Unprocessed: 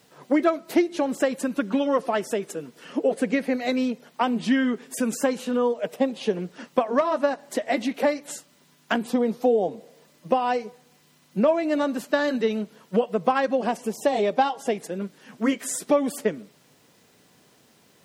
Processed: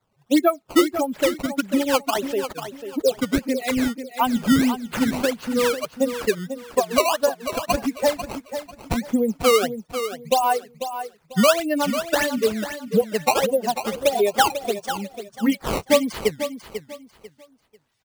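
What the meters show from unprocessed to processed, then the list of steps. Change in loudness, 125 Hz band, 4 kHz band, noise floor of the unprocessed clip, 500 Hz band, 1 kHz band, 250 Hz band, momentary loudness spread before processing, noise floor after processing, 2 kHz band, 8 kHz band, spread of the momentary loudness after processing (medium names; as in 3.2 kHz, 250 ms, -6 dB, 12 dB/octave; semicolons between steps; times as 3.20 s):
+2.5 dB, +5.5 dB, +9.0 dB, -59 dBFS, +2.0 dB, +3.0 dB, +2.0 dB, 8 LU, -61 dBFS, +3.5 dB, +6.5 dB, 11 LU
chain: expander on every frequency bin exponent 2; in parallel at +1 dB: peak limiter -23.5 dBFS, peak gain reduction 12 dB; on the sum: decimation with a swept rate 15×, swing 160% 1.6 Hz; feedback delay 494 ms, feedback 27%, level -10 dB; trim +3 dB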